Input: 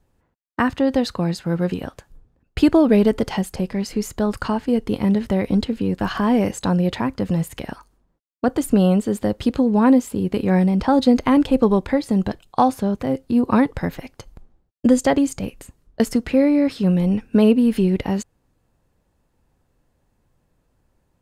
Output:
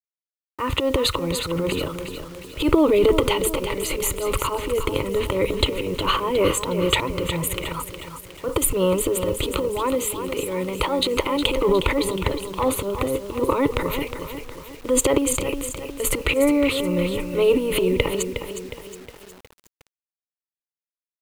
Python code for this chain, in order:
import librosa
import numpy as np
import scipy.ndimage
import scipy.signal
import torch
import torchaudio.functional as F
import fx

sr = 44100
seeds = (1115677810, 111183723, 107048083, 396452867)

y = fx.low_shelf(x, sr, hz=450.0, db=-7.5, at=(9.52, 11.57))
y = fx.transient(y, sr, attack_db=-10, sustain_db=12)
y = fx.low_shelf(y, sr, hz=150.0, db=-2.0)
y = fx.fixed_phaser(y, sr, hz=1100.0, stages=8)
y = fx.echo_feedback(y, sr, ms=362, feedback_pct=47, wet_db=-9.0)
y = fx.quant_dither(y, sr, seeds[0], bits=8, dither='none')
y = F.gain(torch.from_numpy(y), 3.5).numpy()